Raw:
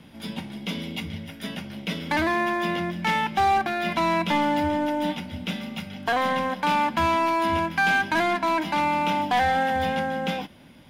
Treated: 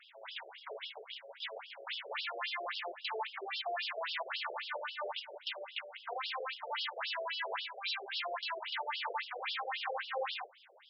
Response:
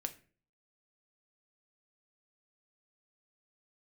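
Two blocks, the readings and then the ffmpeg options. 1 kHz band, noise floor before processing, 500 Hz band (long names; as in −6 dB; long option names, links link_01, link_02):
−17.5 dB, −47 dBFS, −14.5 dB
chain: -af "acompressor=threshold=-27dB:ratio=1.5,aresample=22050,aresample=44100,aeval=exprs='0.0422*(abs(mod(val(0)/0.0422+3,4)-2)-1)':channel_layout=same,aeval=exprs='val(0)+0.00355*sin(2*PI*7900*n/s)':channel_layout=same,afftfilt=real='re*between(b*sr/1024,500*pow(4000/500,0.5+0.5*sin(2*PI*3.7*pts/sr))/1.41,500*pow(4000/500,0.5+0.5*sin(2*PI*3.7*pts/sr))*1.41)':imag='im*between(b*sr/1024,500*pow(4000/500,0.5+0.5*sin(2*PI*3.7*pts/sr))/1.41,500*pow(4000/500,0.5+0.5*sin(2*PI*3.7*pts/sr))*1.41)':win_size=1024:overlap=0.75,volume=1dB"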